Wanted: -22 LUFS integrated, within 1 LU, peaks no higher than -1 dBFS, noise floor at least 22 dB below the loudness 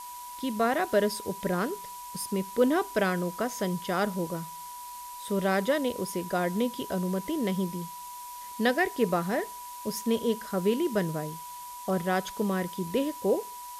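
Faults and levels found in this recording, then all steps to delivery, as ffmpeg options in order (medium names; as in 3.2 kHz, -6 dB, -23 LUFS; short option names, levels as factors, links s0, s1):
steady tone 980 Hz; tone level -40 dBFS; noise floor -42 dBFS; noise floor target -52 dBFS; loudness -29.5 LUFS; peak level -12.0 dBFS; loudness target -22.0 LUFS
-> -af "bandreject=f=980:w=30"
-af "afftdn=nr=10:nf=-42"
-af "volume=2.37"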